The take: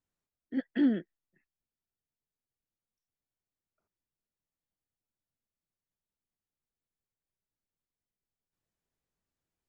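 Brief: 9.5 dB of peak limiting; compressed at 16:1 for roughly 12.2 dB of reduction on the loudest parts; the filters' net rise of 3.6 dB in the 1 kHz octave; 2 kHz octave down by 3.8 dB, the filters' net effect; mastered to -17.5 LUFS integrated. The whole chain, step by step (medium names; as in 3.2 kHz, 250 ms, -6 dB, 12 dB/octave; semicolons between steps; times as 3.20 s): peaking EQ 1 kHz +7 dB; peaking EQ 2 kHz -7 dB; compression 16:1, threshold -33 dBFS; trim +28 dB; peak limiter -7 dBFS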